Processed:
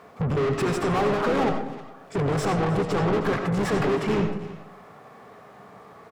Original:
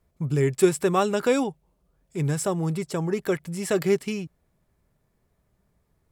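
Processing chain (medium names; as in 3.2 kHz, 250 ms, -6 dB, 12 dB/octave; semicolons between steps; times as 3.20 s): high-pass 74 Hz 12 dB/octave; peaking EQ 320 Hz -13 dB 0.43 oct; harmonic-percussive split percussive -7 dB; peaking EQ 11 kHz -7.5 dB 2.2 oct; compression 2.5:1, threshold -28 dBFS, peak gain reduction 6.5 dB; peak limiter -26 dBFS, peak gain reduction 7 dB; small resonant body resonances 250/420/740/1100 Hz, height 14 dB, ringing for 30 ms; harmony voices -7 st -7 dB, -5 st -9 dB; overdrive pedal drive 37 dB, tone 2 kHz, clips at -9 dBFS; delay 311 ms -19 dB; reverberation RT60 0.55 s, pre-delay 50 ms, DRR 5 dB; tape noise reduction on one side only encoder only; trim -8 dB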